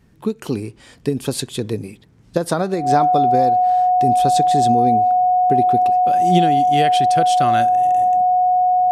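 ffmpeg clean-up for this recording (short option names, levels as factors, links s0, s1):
-af "bandreject=f=730:w=30"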